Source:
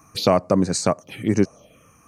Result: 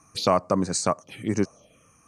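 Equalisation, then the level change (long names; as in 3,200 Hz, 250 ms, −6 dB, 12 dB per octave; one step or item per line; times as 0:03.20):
low-pass filter 10,000 Hz 24 dB per octave
dynamic equaliser 1,100 Hz, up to +7 dB, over −35 dBFS, Q 1.5
high-shelf EQ 6,000 Hz +8.5 dB
−6.0 dB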